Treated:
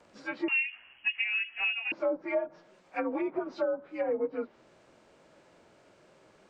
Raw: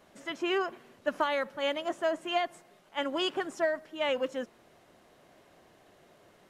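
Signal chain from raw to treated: inharmonic rescaling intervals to 89%; treble ducked by the level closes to 710 Hz, closed at -28 dBFS; 0.48–1.92 inverted band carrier 3100 Hz; gain +2.5 dB

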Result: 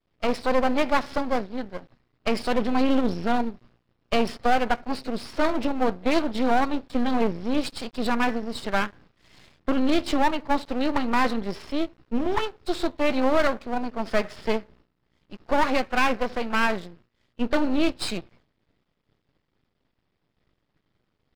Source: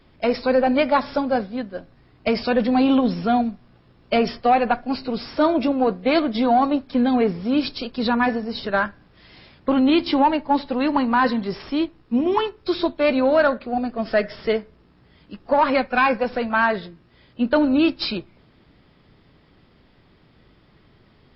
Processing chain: expander -44 dBFS; half-wave rectifier

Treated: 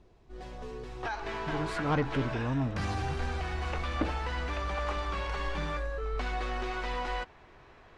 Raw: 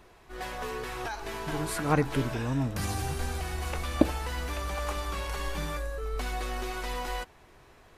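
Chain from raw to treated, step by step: bell 1600 Hz -14 dB 2.8 oct, from 1.03 s +3 dB; soft clip -21.5 dBFS, distortion -11 dB; air absorption 130 m

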